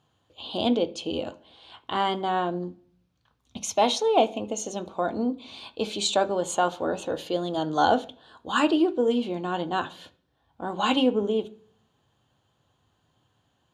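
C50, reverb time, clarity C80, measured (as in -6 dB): 18.5 dB, 0.45 s, 23.5 dB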